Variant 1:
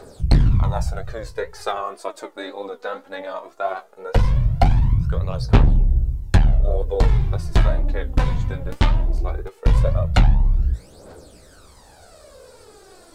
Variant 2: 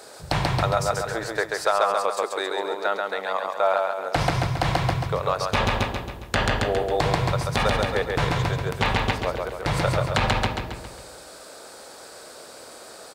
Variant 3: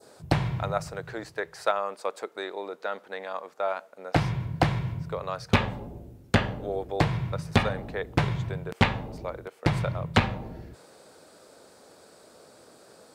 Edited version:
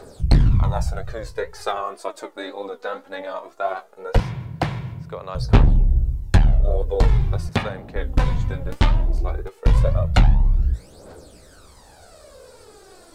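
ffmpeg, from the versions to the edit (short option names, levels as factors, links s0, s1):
-filter_complex "[2:a]asplit=2[s0][s1];[0:a]asplit=3[s2][s3][s4];[s2]atrim=end=4.202[s5];[s0]atrim=start=4.198:end=5.352[s6];[s3]atrim=start=5.348:end=7.492[s7];[s1]atrim=start=7.488:end=7.962[s8];[s4]atrim=start=7.958[s9];[s5][s6]acrossfade=d=0.004:c1=hsin:c2=hsin[s10];[s10][s7]acrossfade=d=0.004:c1=hsin:c2=hsin[s11];[s11][s8]acrossfade=d=0.004:c1=hsin:c2=hsin[s12];[s12][s9]acrossfade=d=0.004:c1=hsin:c2=hsin"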